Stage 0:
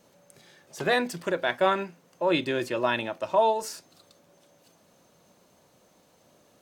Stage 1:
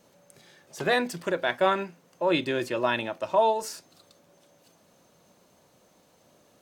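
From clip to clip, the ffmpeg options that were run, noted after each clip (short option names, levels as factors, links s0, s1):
-af anull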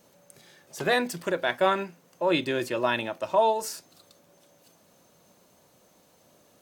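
-af "highshelf=f=10000:g=7.5"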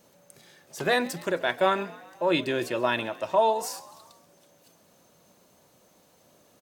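-filter_complex "[0:a]asplit=6[s0][s1][s2][s3][s4][s5];[s1]adelay=132,afreqshift=54,volume=0.1[s6];[s2]adelay=264,afreqshift=108,volume=0.0589[s7];[s3]adelay=396,afreqshift=162,volume=0.0347[s8];[s4]adelay=528,afreqshift=216,volume=0.0207[s9];[s5]adelay=660,afreqshift=270,volume=0.0122[s10];[s0][s6][s7][s8][s9][s10]amix=inputs=6:normalize=0"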